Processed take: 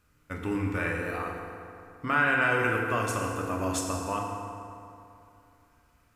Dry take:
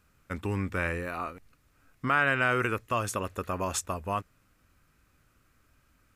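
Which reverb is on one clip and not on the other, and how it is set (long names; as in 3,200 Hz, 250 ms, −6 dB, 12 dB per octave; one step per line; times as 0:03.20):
feedback delay network reverb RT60 2.7 s, high-frequency decay 0.6×, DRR −1 dB
level −2.5 dB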